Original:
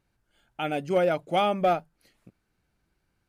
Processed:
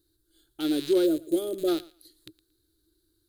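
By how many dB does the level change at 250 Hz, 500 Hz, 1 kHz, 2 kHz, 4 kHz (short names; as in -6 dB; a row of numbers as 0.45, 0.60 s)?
+7.0, -1.0, -18.5, -11.0, +0.5 dB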